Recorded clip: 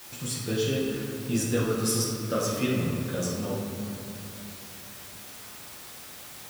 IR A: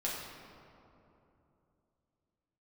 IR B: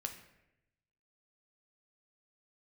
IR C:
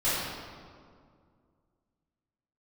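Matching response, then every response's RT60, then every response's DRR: A; 3.0, 0.90, 2.1 seconds; −6.0, 4.0, −14.0 decibels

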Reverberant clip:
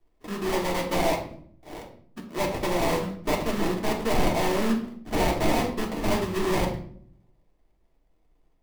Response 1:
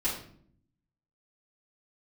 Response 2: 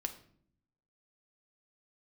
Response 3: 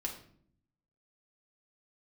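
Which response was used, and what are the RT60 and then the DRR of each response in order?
3; 0.60, 0.60, 0.60 seconds; −10.0, 5.5, −0.5 decibels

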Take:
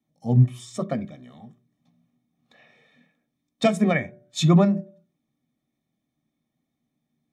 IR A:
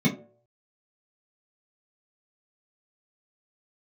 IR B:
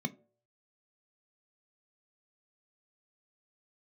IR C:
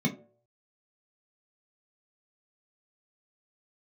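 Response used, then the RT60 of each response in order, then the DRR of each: B; 0.55, 0.55, 0.55 seconds; −7.0, 9.0, −0.5 decibels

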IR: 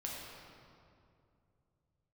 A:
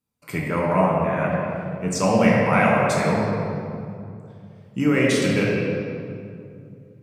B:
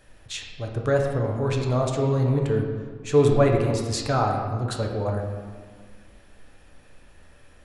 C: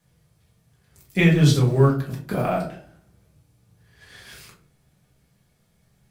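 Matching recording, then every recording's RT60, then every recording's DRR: A; 2.5, 1.7, 0.45 seconds; −4.0, 0.5, −5.0 decibels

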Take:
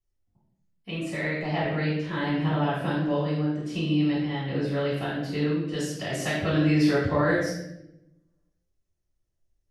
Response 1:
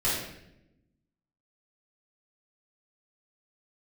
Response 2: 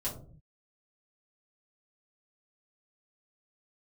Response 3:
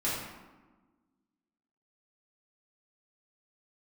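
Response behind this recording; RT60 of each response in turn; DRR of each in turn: 1; 0.85 s, non-exponential decay, 1.3 s; −11.0, −7.5, −9.5 decibels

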